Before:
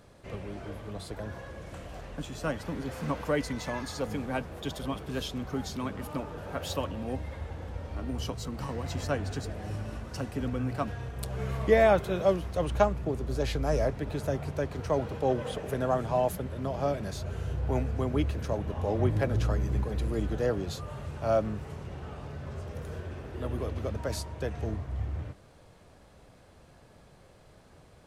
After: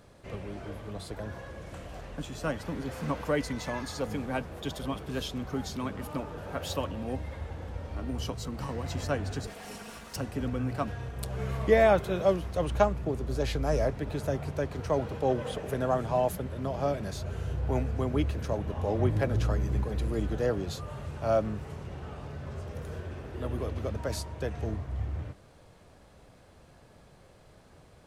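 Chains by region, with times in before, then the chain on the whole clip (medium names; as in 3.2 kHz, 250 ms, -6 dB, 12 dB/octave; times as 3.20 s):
9.47–10.16 s: comb filter that takes the minimum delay 4.3 ms + tilt EQ +3 dB/octave
whole clip: none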